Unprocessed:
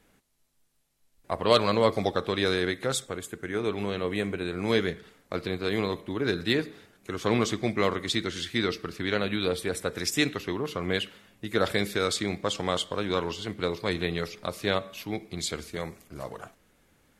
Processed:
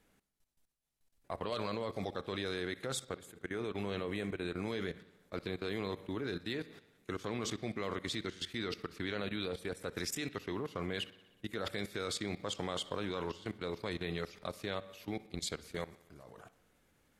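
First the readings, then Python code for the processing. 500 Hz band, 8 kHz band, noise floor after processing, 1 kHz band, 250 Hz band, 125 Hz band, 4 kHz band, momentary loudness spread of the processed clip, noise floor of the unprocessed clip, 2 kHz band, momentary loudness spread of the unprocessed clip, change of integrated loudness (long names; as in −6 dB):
−11.5 dB, −9.0 dB, −72 dBFS, −11.5 dB, −10.0 dB, −9.5 dB, −10.5 dB, 6 LU, −66 dBFS, −11.0 dB, 11 LU, −11.0 dB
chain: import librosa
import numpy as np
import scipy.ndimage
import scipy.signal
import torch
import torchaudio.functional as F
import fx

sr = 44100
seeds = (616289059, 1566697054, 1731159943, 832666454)

p1 = fx.level_steps(x, sr, step_db=17)
p2 = p1 + fx.echo_bbd(p1, sr, ms=61, stages=2048, feedback_pct=71, wet_db=-21.5, dry=0)
y = p2 * librosa.db_to_amplitude(-3.5)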